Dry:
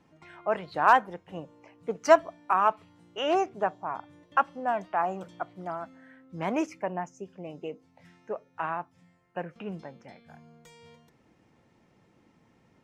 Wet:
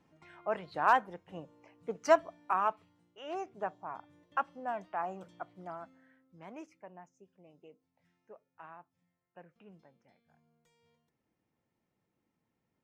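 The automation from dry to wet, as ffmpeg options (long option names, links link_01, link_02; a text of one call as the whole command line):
ffmpeg -i in.wav -af "volume=4dB,afade=type=out:start_time=2.55:duration=0.64:silence=0.237137,afade=type=in:start_time=3.19:duration=0.48:silence=0.316228,afade=type=out:start_time=5.81:duration=0.58:silence=0.298538" out.wav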